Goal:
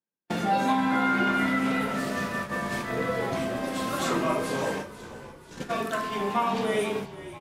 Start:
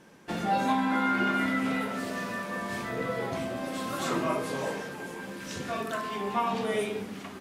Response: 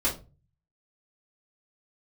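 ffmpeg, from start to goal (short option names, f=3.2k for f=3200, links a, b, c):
-filter_complex "[0:a]highpass=87,agate=range=-50dB:threshold=-34dB:ratio=16:detection=peak,asplit=2[a][b];[b]acompressor=threshold=-37dB:ratio=6,volume=2dB[c];[a][c]amix=inputs=2:normalize=0,asplit=6[d][e][f][g][h][i];[e]adelay=489,afreqshift=-57,volume=-15dB[j];[f]adelay=978,afreqshift=-114,volume=-20.7dB[k];[g]adelay=1467,afreqshift=-171,volume=-26.4dB[l];[h]adelay=1956,afreqshift=-228,volume=-32dB[m];[i]adelay=2445,afreqshift=-285,volume=-37.7dB[n];[d][j][k][l][m][n]amix=inputs=6:normalize=0"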